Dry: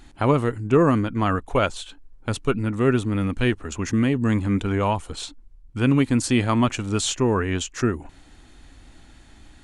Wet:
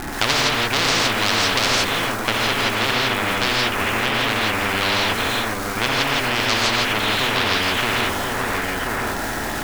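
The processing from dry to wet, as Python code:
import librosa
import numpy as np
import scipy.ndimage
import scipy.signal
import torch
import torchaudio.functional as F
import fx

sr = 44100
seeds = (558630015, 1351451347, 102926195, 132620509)

p1 = scipy.signal.sosfilt(scipy.signal.butter(4, 1900.0, 'lowpass', fs=sr, output='sos'), x)
p2 = fx.peak_eq(p1, sr, hz=68.0, db=-4.5, octaves=2.6)
p3 = fx.hum_notches(p2, sr, base_hz=50, count=8)
p4 = fx.level_steps(p3, sr, step_db=9)
p5 = p3 + F.gain(torch.from_numpy(p4), 3.0).numpy()
p6 = fx.dmg_crackle(p5, sr, seeds[0], per_s=280.0, level_db=-41.0)
p7 = 10.0 ** (-15.5 / 20.0) * np.tanh(p6 / 10.0 ** (-15.5 / 20.0))
p8 = p7 + fx.echo_single(p7, sr, ms=1031, db=-17.5, dry=0)
p9 = fx.rev_gated(p8, sr, seeds[1], gate_ms=190, shape='rising', drr_db=-5.0)
p10 = fx.spectral_comp(p9, sr, ratio=10.0)
y = F.gain(torch.from_numpy(p10), -1.5).numpy()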